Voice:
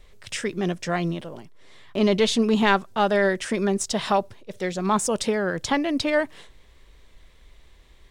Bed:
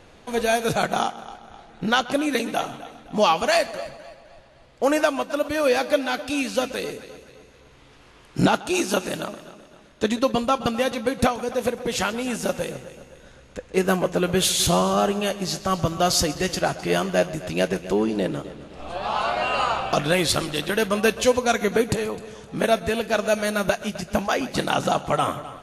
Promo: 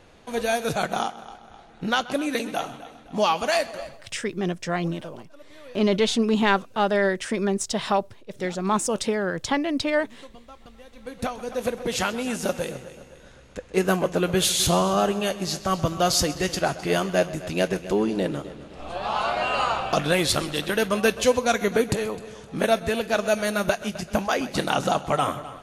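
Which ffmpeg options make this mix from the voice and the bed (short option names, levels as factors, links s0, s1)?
-filter_complex "[0:a]adelay=3800,volume=0.891[s0];[1:a]volume=11.9,afade=t=out:st=3.88:d=0.22:silence=0.0749894,afade=t=in:st=10.92:d=0.9:silence=0.0595662[s1];[s0][s1]amix=inputs=2:normalize=0"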